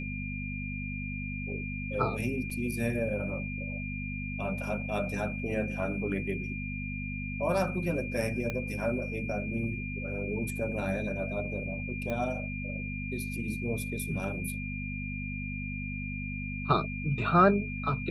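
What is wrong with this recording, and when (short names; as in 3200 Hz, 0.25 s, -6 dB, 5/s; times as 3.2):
hum 50 Hz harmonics 5 -37 dBFS
tone 2400 Hz -39 dBFS
2.5–2.51 gap 5.1 ms
8.5 pop -20 dBFS
12.1 pop -22 dBFS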